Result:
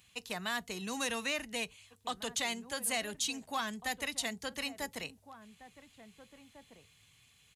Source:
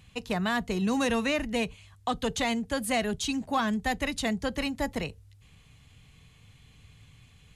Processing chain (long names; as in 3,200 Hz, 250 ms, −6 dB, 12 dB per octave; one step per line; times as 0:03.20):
spectral tilt +3 dB per octave
slap from a distant wall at 300 metres, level −13 dB
level −8 dB